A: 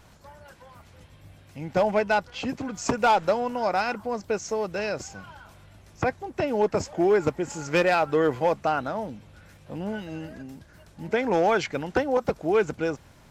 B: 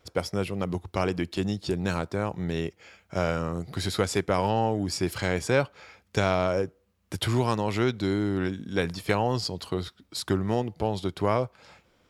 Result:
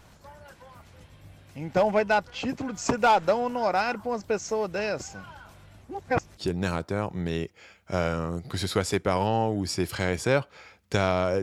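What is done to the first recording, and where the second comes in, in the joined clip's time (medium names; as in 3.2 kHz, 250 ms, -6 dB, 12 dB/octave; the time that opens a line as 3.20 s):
A
5.84–6.37 s: reverse
6.37 s: go over to B from 1.60 s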